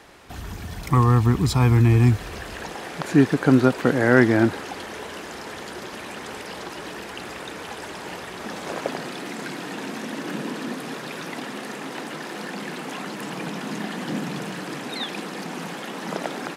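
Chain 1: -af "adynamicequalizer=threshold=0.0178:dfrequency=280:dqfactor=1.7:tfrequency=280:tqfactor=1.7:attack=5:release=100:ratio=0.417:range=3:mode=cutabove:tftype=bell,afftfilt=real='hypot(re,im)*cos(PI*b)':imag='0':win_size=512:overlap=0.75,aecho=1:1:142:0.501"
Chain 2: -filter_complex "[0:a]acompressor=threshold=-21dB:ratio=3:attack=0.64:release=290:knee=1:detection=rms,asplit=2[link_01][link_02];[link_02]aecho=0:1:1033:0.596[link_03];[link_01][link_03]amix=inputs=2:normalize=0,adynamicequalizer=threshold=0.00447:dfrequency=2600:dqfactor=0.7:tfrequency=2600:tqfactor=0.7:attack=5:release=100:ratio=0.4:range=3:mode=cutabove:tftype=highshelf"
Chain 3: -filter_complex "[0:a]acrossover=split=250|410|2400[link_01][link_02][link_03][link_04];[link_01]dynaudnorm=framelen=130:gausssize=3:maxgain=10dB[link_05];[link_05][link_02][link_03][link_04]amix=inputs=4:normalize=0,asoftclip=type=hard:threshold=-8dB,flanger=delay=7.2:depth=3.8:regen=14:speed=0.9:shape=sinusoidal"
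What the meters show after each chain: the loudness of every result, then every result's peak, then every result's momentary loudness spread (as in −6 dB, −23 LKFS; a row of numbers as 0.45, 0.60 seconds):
−29.5, −30.0, −21.5 LKFS; −6.5, −12.5, −8.0 dBFS; 15, 9, 20 LU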